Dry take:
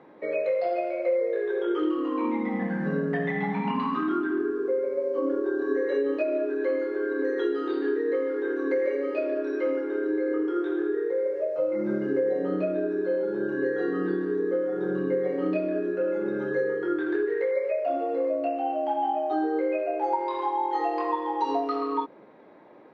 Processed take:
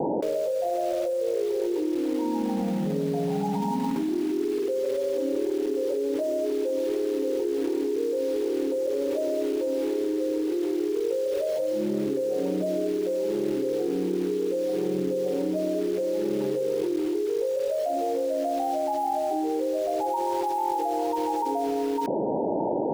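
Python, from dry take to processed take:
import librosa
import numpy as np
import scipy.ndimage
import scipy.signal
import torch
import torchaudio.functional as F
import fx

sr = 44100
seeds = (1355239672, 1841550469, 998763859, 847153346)

p1 = scipy.signal.sosfilt(scipy.signal.cheby1(10, 1.0, 950.0, 'lowpass', fs=sr, output='sos'), x)
p2 = fx.quant_dither(p1, sr, seeds[0], bits=6, dither='none')
p3 = p1 + (p2 * librosa.db_to_amplitude(-5.5))
p4 = fx.env_flatten(p3, sr, amount_pct=100)
y = p4 * librosa.db_to_amplitude(-7.5)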